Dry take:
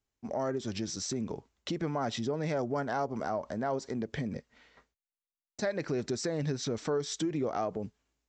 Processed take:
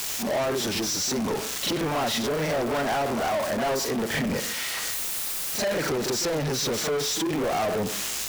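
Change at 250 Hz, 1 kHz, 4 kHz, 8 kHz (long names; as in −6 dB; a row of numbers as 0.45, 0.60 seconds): +5.5, +8.5, +14.0, +14.5 decibels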